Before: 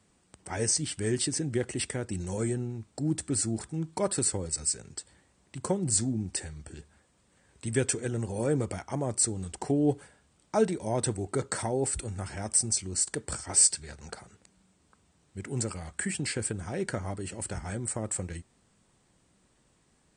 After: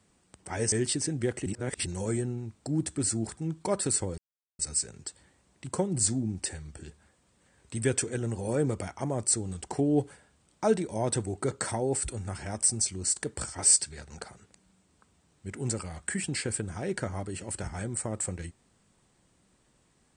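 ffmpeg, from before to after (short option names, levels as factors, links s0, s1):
-filter_complex "[0:a]asplit=5[s0][s1][s2][s3][s4];[s0]atrim=end=0.722[s5];[s1]atrim=start=1.038:end=1.782[s6];[s2]atrim=start=1.778:end=2.182,asetpts=PTS-STARTPTS,areverse[s7];[s3]atrim=start=2.178:end=4.5,asetpts=PTS-STARTPTS,afade=t=out:st=2.318:d=0.004:c=hsin,apad=pad_dur=0.41[s8];[s4]atrim=start=4.5,asetpts=PTS-STARTPTS,afade=t=in:d=0.004:c=hsin[s9];[s5][s6]acrossfade=d=0.004:c1=hsin:c2=hsin[s10];[s10][s7]acrossfade=d=0.004:c1=hsin:c2=hsin[s11];[s8][s9]concat=n=2:v=0:a=1[s12];[s11][s12]acrossfade=d=0.004:c1=hsin:c2=hsin"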